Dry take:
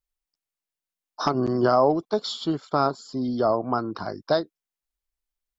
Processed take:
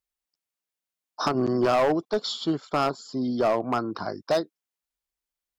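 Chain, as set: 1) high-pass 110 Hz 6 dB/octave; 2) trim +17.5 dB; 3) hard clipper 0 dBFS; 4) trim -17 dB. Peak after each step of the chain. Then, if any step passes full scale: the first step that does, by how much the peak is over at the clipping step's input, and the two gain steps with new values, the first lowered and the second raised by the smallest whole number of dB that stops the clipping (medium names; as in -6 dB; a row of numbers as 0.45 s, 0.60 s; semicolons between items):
-8.0 dBFS, +9.5 dBFS, 0.0 dBFS, -17.0 dBFS; step 2, 9.5 dB; step 2 +7.5 dB, step 4 -7 dB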